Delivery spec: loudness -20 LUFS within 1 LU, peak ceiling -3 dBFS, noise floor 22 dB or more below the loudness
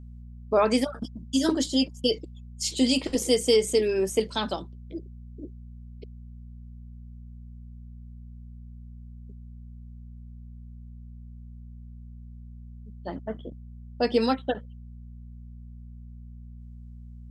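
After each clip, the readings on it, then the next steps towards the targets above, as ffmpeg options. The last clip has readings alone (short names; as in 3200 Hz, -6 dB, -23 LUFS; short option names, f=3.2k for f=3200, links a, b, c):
hum 60 Hz; harmonics up to 240 Hz; hum level -40 dBFS; loudness -26.0 LUFS; peak -9.0 dBFS; loudness target -20.0 LUFS
-> -af "bandreject=f=60:t=h:w=4,bandreject=f=120:t=h:w=4,bandreject=f=180:t=h:w=4,bandreject=f=240:t=h:w=4"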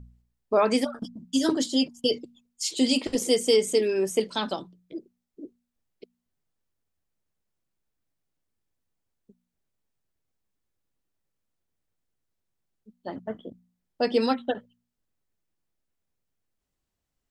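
hum none; loudness -25.5 LUFS; peak -9.0 dBFS; loudness target -20.0 LUFS
-> -af "volume=5.5dB"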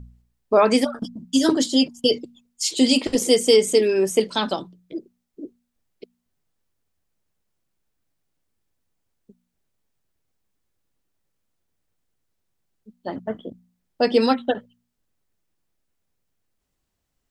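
loudness -20.0 LUFS; peak -3.5 dBFS; noise floor -77 dBFS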